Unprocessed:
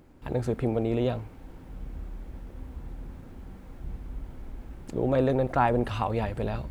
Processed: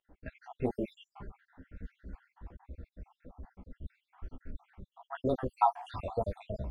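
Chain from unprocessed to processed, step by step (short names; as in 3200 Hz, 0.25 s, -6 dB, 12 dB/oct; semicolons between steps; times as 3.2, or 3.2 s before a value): random spectral dropouts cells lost 73%; low-pass opened by the level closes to 1600 Hz, open at -28.5 dBFS; 0.7–1.35 comb 5 ms, depth 97%; chorus voices 6, 1 Hz, delay 13 ms, depth 3 ms; LFO bell 0.31 Hz 640–1700 Hz +6 dB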